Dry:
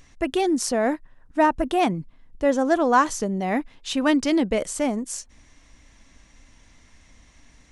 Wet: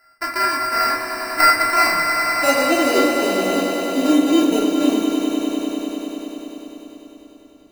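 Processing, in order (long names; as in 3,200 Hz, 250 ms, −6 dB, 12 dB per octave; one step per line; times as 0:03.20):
samples sorted by size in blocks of 32 samples
band-pass filter sweep 1,600 Hz → 400 Hz, 0:01.40–0:02.87
decimation without filtering 13×
echo that builds up and dies away 99 ms, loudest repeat 5, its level −10 dB
rectangular room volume 770 cubic metres, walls furnished, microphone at 3 metres
level +4.5 dB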